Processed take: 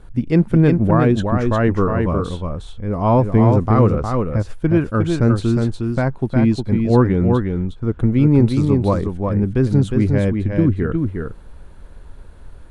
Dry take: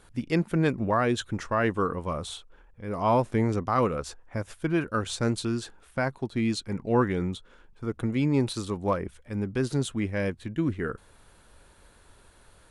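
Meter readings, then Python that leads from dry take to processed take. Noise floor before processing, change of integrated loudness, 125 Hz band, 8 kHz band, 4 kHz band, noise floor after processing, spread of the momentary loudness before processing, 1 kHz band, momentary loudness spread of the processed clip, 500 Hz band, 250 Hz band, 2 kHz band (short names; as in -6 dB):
-57 dBFS, +11.0 dB, +15.0 dB, n/a, 0.0 dB, -40 dBFS, 11 LU, +6.0 dB, 9 LU, +9.0 dB, +12.0 dB, +3.5 dB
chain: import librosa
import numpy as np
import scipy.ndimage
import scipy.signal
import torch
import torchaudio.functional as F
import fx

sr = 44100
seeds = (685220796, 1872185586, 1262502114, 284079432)

p1 = fx.tilt_eq(x, sr, slope=-3.0)
p2 = p1 + fx.echo_single(p1, sr, ms=359, db=-4.5, dry=0)
y = p2 * librosa.db_to_amplitude(4.5)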